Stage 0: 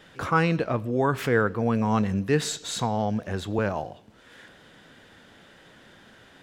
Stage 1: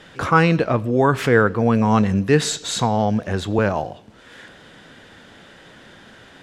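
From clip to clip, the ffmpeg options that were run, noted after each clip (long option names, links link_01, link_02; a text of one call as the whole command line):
ffmpeg -i in.wav -af "lowpass=11000,volume=7dB" out.wav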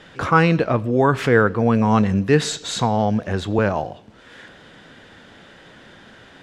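ffmpeg -i in.wav -af "highshelf=frequency=9900:gain=-10" out.wav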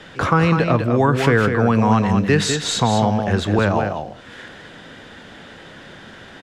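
ffmpeg -i in.wav -filter_complex "[0:a]acrossover=split=290|690[link_01][link_02][link_03];[link_01]acompressor=threshold=-21dB:ratio=4[link_04];[link_02]acompressor=threshold=-28dB:ratio=4[link_05];[link_03]acompressor=threshold=-23dB:ratio=4[link_06];[link_04][link_05][link_06]amix=inputs=3:normalize=0,asplit=2[link_07][link_08];[link_08]aecho=0:1:201:0.473[link_09];[link_07][link_09]amix=inputs=2:normalize=0,volume=4.5dB" out.wav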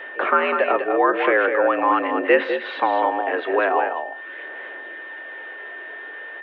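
ffmpeg -i in.wav -af "aphaser=in_gain=1:out_gain=1:delay=3.3:decay=0.3:speed=0.43:type=sinusoidal,highpass=frequency=290:width_type=q:width=0.5412,highpass=frequency=290:width_type=q:width=1.307,lowpass=frequency=2800:width_type=q:width=0.5176,lowpass=frequency=2800:width_type=q:width=0.7071,lowpass=frequency=2800:width_type=q:width=1.932,afreqshift=75,aeval=exprs='val(0)+0.02*sin(2*PI*1800*n/s)':channel_layout=same" out.wav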